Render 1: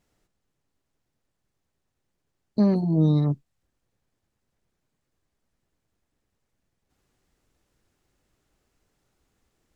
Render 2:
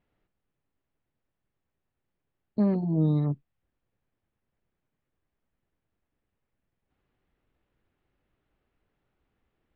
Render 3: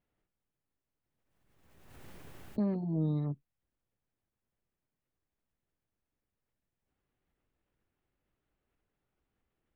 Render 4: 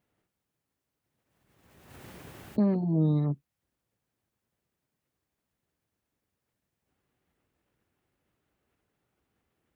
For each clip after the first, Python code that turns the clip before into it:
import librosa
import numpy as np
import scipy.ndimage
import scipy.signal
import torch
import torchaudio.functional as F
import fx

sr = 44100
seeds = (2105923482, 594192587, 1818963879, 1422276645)

y1 = scipy.signal.sosfilt(scipy.signal.butter(4, 3200.0, 'lowpass', fs=sr, output='sos'), x)
y1 = F.gain(torch.from_numpy(y1), -4.0).numpy()
y2 = fx.pre_swell(y1, sr, db_per_s=38.0)
y2 = F.gain(torch.from_numpy(y2), -7.5).numpy()
y3 = scipy.signal.sosfilt(scipy.signal.butter(2, 70.0, 'highpass', fs=sr, output='sos'), y2)
y3 = F.gain(torch.from_numpy(y3), 6.5).numpy()